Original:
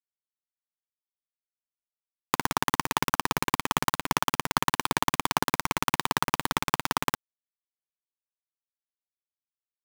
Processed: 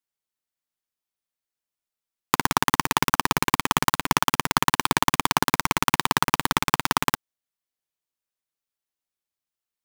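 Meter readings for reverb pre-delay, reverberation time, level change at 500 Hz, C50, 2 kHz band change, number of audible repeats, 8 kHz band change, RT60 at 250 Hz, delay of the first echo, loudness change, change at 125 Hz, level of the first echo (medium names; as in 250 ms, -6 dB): no reverb, no reverb, +3.5 dB, no reverb, +5.5 dB, no echo, +5.5 dB, no reverb, no echo, +5.0 dB, +5.5 dB, no echo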